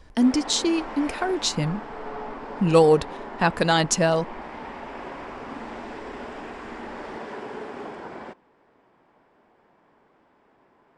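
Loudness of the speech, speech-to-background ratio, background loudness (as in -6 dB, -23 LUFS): -22.0 LUFS, 15.0 dB, -37.0 LUFS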